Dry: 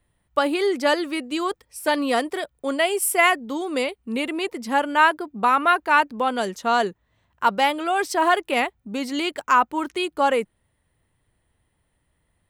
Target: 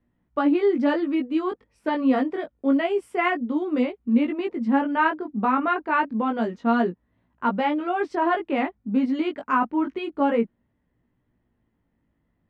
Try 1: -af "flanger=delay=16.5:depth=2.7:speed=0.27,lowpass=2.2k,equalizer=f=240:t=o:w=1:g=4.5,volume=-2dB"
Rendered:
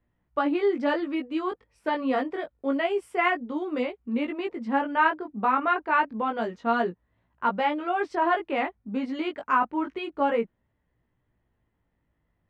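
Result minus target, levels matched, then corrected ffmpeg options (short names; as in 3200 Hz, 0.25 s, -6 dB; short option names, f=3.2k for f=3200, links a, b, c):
250 Hz band -4.0 dB
-af "flanger=delay=16.5:depth=2.7:speed=0.27,lowpass=2.2k,equalizer=f=240:t=o:w=1:g=13.5,volume=-2dB"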